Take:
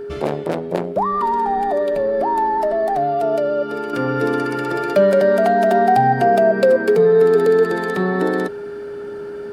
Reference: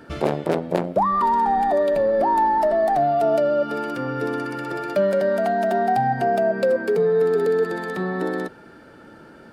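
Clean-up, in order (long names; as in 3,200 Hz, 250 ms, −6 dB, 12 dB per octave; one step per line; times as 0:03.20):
notch filter 410 Hz, Q 30
level 0 dB, from 0:03.93 −6 dB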